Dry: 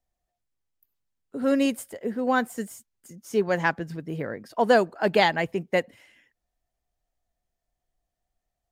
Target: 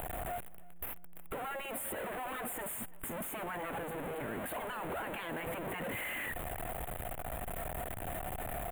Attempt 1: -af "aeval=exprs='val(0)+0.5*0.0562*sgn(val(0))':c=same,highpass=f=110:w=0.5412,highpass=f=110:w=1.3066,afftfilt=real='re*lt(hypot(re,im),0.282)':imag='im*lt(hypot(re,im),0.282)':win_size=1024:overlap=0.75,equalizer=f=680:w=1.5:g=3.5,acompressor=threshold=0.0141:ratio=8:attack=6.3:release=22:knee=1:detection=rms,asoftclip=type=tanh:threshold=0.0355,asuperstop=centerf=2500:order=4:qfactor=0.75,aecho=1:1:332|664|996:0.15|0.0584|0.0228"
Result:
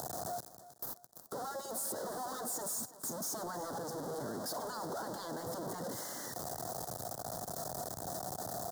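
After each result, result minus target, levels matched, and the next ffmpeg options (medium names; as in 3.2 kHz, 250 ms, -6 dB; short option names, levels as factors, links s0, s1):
2 kHz band -10.5 dB; echo-to-direct +7 dB; 125 Hz band -2.5 dB
-af "aeval=exprs='val(0)+0.5*0.0562*sgn(val(0))':c=same,highpass=f=110:w=0.5412,highpass=f=110:w=1.3066,afftfilt=real='re*lt(hypot(re,im),0.282)':imag='im*lt(hypot(re,im),0.282)':win_size=1024:overlap=0.75,equalizer=f=680:w=1.5:g=3.5,acompressor=threshold=0.0141:ratio=8:attack=6.3:release=22:knee=1:detection=rms,asoftclip=type=tanh:threshold=0.0355,asuperstop=centerf=5300:order=4:qfactor=0.75,aecho=1:1:332|664|996:0.15|0.0584|0.0228"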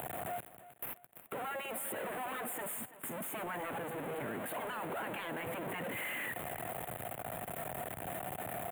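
echo-to-direct +7 dB; 125 Hz band -2.5 dB
-af "aeval=exprs='val(0)+0.5*0.0562*sgn(val(0))':c=same,highpass=f=110:w=0.5412,highpass=f=110:w=1.3066,afftfilt=real='re*lt(hypot(re,im),0.282)':imag='im*lt(hypot(re,im),0.282)':win_size=1024:overlap=0.75,equalizer=f=680:w=1.5:g=3.5,acompressor=threshold=0.0141:ratio=8:attack=6.3:release=22:knee=1:detection=rms,asoftclip=type=tanh:threshold=0.0355,asuperstop=centerf=5300:order=4:qfactor=0.75,aecho=1:1:332|664|996:0.0668|0.0261|0.0102"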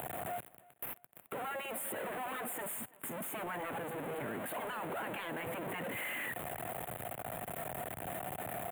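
125 Hz band -2.5 dB
-af "aeval=exprs='val(0)+0.5*0.0562*sgn(val(0))':c=same,afftfilt=real='re*lt(hypot(re,im),0.282)':imag='im*lt(hypot(re,im),0.282)':win_size=1024:overlap=0.75,equalizer=f=680:w=1.5:g=3.5,acompressor=threshold=0.0141:ratio=8:attack=6.3:release=22:knee=1:detection=rms,asoftclip=type=tanh:threshold=0.0355,asuperstop=centerf=5300:order=4:qfactor=0.75,aecho=1:1:332|664|996:0.0668|0.0261|0.0102"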